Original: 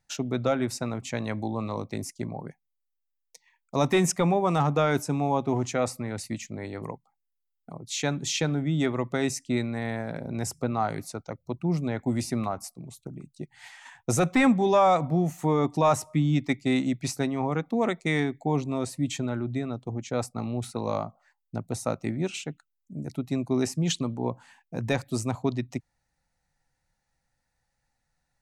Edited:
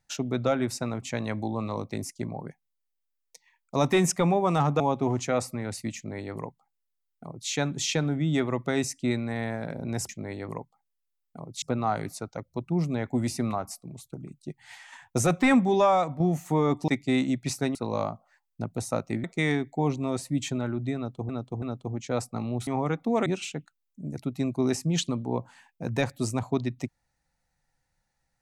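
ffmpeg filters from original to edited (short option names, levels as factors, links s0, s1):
-filter_complex "[0:a]asplit=12[s0][s1][s2][s3][s4][s5][s6][s7][s8][s9][s10][s11];[s0]atrim=end=4.802[s12];[s1]atrim=start=5.258:end=10.552[s13];[s2]atrim=start=6.418:end=7.952[s14];[s3]atrim=start=10.548:end=15.13,asetpts=PTS-STARTPTS,afade=t=out:st=4.162:d=0.42:silence=0.421697[s15];[s4]atrim=start=15.13:end=15.812,asetpts=PTS-STARTPTS,afade=t=in:d=0.004:c=hsin:silence=0.421697[s16];[s5]atrim=start=16.458:end=17.332[s17];[s6]atrim=start=20.688:end=22.182[s18];[s7]atrim=start=17.918:end=19.972[s19];[s8]atrim=start=19.638:end=19.972[s20];[s9]atrim=start=19.638:end=20.692[s21];[s10]atrim=start=17.328:end=17.922[s22];[s11]atrim=start=22.178[s23];[s12][s13]acrossfade=d=0.004:c1=hsin:c2=hsin[s24];[s24][s14]acrossfade=d=0.004:c1=hsin:c2=hsin[s25];[s15][s16]concat=n=2:v=0:a=1[s26];[s25][s26]acrossfade=d=0.004:c1=hsin:c2=hsin[s27];[s27][s17]acrossfade=d=0.004:c1=hsin:c2=hsin[s28];[s28][s18]acrossfade=d=0.004:c1=hsin:c2=hsin[s29];[s29][s19]acrossfade=d=0.004:c1=hsin:c2=hsin[s30];[s30][s20]acrossfade=d=0.004:c1=hsin:c2=hsin[s31];[s31][s21]acrossfade=d=0.004:c1=hsin:c2=hsin[s32];[s32][s22]acrossfade=d=0.004:c1=hsin:c2=hsin[s33];[s33][s23]acrossfade=d=0.004:c1=hsin:c2=hsin"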